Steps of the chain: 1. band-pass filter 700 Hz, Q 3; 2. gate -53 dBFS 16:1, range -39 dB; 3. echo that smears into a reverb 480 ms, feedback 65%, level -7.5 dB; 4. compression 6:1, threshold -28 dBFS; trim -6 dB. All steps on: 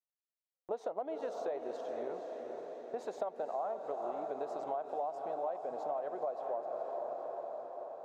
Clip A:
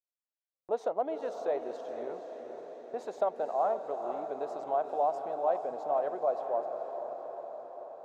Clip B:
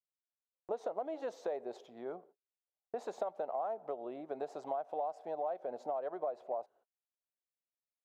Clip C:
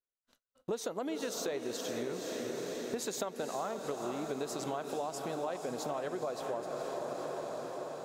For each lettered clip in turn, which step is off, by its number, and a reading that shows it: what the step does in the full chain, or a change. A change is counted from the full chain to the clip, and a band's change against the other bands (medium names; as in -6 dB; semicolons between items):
4, mean gain reduction 3.0 dB; 3, momentary loudness spread change +2 LU; 1, 1 kHz band -11.0 dB